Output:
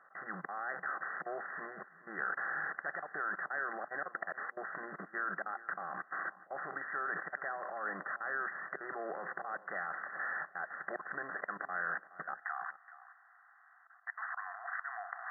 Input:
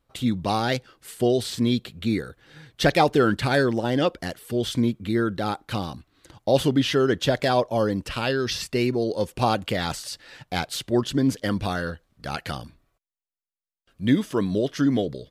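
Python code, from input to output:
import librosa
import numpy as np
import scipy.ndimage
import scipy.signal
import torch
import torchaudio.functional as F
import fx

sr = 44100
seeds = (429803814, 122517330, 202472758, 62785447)

y = fx.bin_compress(x, sr, power=0.6)
y = fx.low_shelf_res(y, sr, hz=680.0, db=-11.5, q=3.0)
y = fx.rider(y, sr, range_db=5, speed_s=0.5)
y = fx.auto_swell(y, sr, attack_ms=671.0)
y = fx.level_steps(y, sr, step_db=23)
y = fx.fixed_phaser(y, sr, hz=930.0, stages=6)
y = fx.mod_noise(y, sr, seeds[0], snr_db=13)
y = fx.brickwall_bandpass(y, sr, low_hz=fx.steps((0.0, 160.0), (12.33, 670.0)), high_hz=2000.0)
y = y + 10.0 ** (-17.0 / 20.0) * np.pad(y, (int(422 * sr / 1000.0), 0))[:len(y)]
y = F.gain(torch.from_numpy(y), 11.5).numpy()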